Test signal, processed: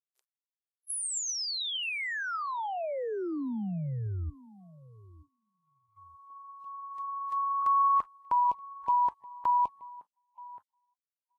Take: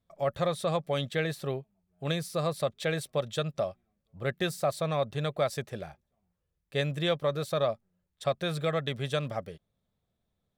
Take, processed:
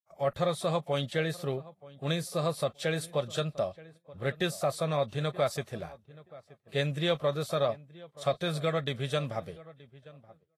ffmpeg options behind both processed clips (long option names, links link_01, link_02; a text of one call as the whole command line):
ffmpeg -i in.wav -filter_complex "[0:a]asplit=2[link_01][link_02];[link_02]adelay=926,lowpass=frequency=1800:poles=1,volume=-19.5dB,asplit=2[link_03][link_04];[link_04]adelay=926,lowpass=frequency=1800:poles=1,volume=0.24[link_05];[link_01][link_03][link_05]amix=inputs=3:normalize=0,agate=range=-17dB:threshold=-56dB:ratio=16:detection=peak" -ar 48000 -c:a libvorbis -b:a 32k out.ogg